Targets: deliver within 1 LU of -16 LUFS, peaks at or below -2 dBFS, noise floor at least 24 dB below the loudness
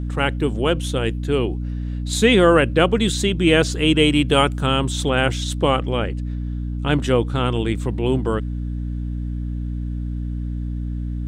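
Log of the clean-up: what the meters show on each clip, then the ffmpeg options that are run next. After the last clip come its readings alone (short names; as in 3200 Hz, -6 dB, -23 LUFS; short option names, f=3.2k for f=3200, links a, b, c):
hum 60 Hz; harmonics up to 300 Hz; hum level -23 dBFS; loudness -20.5 LUFS; peak -2.5 dBFS; loudness target -16.0 LUFS
-> -af "bandreject=f=60:t=h:w=6,bandreject=f=120:t=h:w=6,bandreject=f=180:t=h:w=6,bandreject=f=240:t=h:w=6,bandreject=f=300:t=h:w=6"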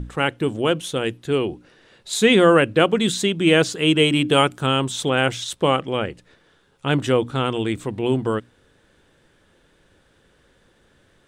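hum none; loudness -20.0 LUFS; peak -2.5 dBFS; loudness target -16.0 LUFS
-> -af "volume=4dB,alimiter=limit=-2dB:level=0:latency=1"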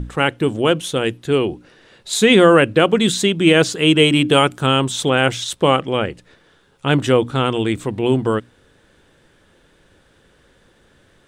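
loudness -16.5 LUFS; peak -2.0 dBFS; noise floor -56 dBFS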